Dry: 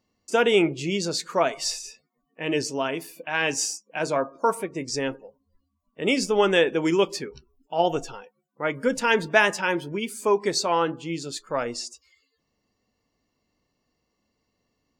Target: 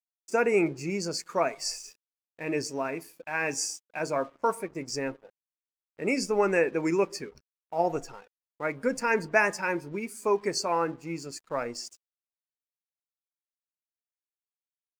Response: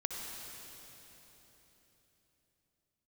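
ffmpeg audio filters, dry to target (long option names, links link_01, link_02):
-af "asuperstop=centerf=3400:order=12:qfactor=2,aeval=exprs='sgn(val(0))*max(abs(val(0))-0.00316,0)':channel_layout=same,volume=-4dB"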